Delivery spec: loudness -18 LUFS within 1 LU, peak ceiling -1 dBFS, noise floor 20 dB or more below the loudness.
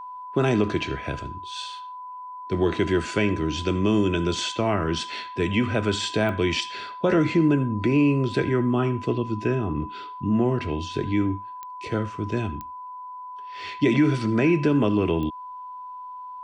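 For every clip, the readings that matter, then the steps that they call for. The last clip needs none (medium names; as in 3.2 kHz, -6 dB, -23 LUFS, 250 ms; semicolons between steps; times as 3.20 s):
clicks found 4; steady tone 1 kHz; tone level -35 dBFS; loudness -24.0 LUFS; peak level -10.0 dBFS; loudness target -18.0 LUFS
-> de-click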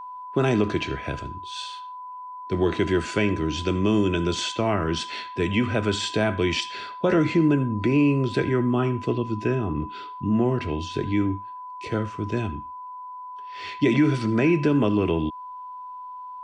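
clicks found 0; steady tone 1 kHz; tone level -35 dBFS
-> band-stop 1 kHz, Q 30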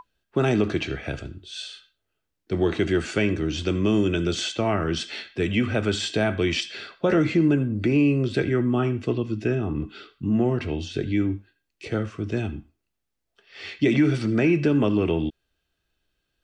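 steady tone not found; loudness -24.0 LUFS; peak level -9.5 dBFS; loudness target -18.0 LUFS
-> trim +6 dB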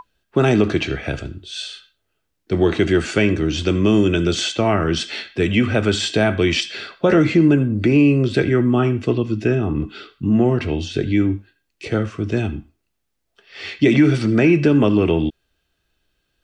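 loudness -18.0 LUFS; peak level -3.5 dBFS; noise floor -73 dBFS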